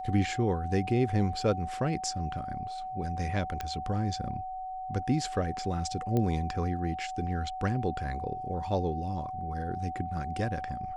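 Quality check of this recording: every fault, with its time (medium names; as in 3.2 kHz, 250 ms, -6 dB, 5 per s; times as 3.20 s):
whine 750 Hz -35 dBFS
3.61 s: pop -19 dBFS
6.17 s: pop -18 dBFS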